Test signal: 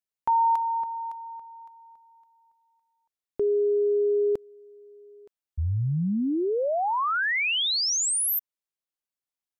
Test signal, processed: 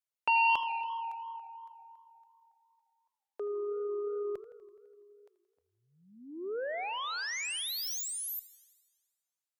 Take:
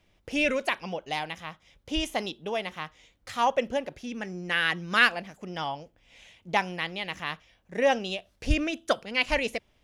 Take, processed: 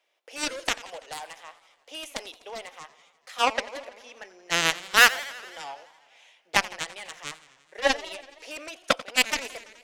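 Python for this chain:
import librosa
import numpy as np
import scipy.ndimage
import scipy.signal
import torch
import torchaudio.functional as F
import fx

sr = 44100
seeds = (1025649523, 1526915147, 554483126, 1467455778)

y = scipy.signal.sosfilt(scipy.signal.butter(4, 480.0, 'highpass', fs=sr, output='sos'), x)
y = fx.cheby_harmonics(y, sr, harmonics=(2, 7), levels_db=(-39, -14), full_scale_db=-7.5)
y = fx.echo_warbled(y, sr, ms=84, feedback_pct=71, rate_hz=2.8, cents=199, wet_db=-18.0)
y = y * librosa.db_to_amplitude(5.0)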